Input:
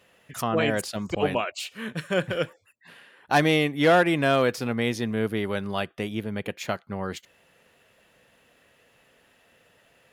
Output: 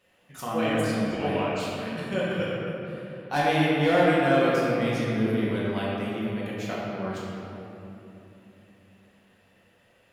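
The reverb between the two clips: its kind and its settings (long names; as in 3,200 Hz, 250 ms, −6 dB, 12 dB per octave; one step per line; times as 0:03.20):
rectangular room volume 150 cubic metres, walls hard, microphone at 1 metre
level −9.5 dB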